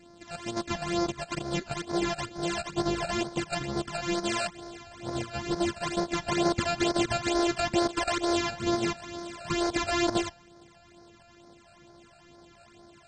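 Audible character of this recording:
a buzz of ramps at a fixed pitch in blocks of 128 samples
phaser sweep stages 12, 2.2 Hz, lowest notch 330–2,800 Hz
AAC

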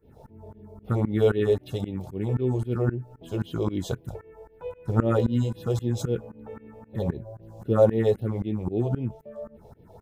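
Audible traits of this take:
phaser sweep stages 4, 3.8 Hz, lowest notch 240–1,400 Hz
tremolo saw up 3.8 Hz, depth 95%

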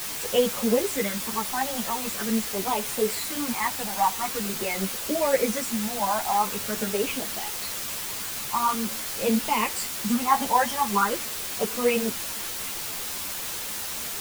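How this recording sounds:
phaser sweep stages 12, 0.45 Hz, lowest notch 400–1,600 Hz
a quantiser's noise floor 6 bits, dither triangular
a shimmering, thickened sound

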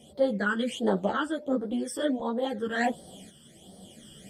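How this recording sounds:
phaser sweep stages 12, 1.4 Hz, lowest notch 690–2,500 Hz
tremolo saw up 0.91 Hz, depth 55%
a shimmering, thickened sound

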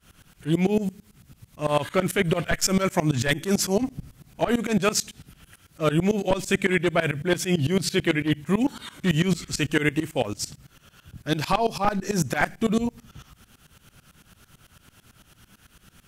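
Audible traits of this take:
tremolo saw up 9 Hz, depth 95%

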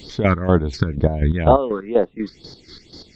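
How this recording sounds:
chopped level 4.1 Hz, depth 65%, duty 40%
phaser sweep stages 6, 2.1 Hz, lowest notch 670–2,500 Hz

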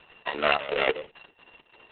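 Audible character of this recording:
a buzz of ramps at a fixed pitch in blocks of 16 samples
chopped level 2.9 Hz, depth 65%, duty 65%
Opus

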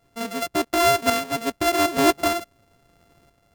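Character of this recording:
a buzz of ramps at a fixed pitch in blocks of 64 samples
tremolo saw up 0.91 Hz, depth 55%

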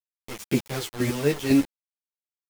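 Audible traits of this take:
chopped level 2 Hz, depth 65%, duty 20%
a quantiser's noise floor 6 bits, dither none
a shimmering, thickened sound

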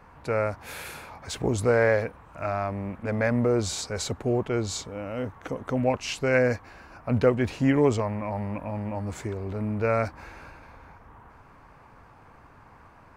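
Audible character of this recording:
background noise floor −53 dBFS
spectral slope −5.5 dB per octave

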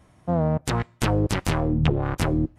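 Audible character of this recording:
background noise floor −57 dBFS
spectral slope −6.5 dB per octave

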